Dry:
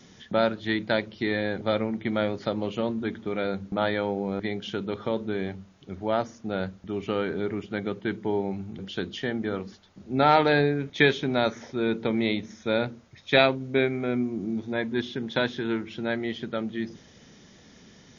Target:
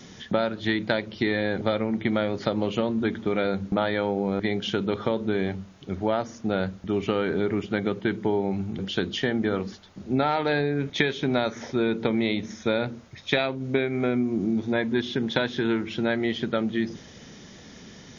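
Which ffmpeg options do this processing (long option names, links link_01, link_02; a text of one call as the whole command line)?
ffmpeg -i in.wav -af "acompressor=threshold=-26dB:ratio=12,volume=6.5dB" out.wav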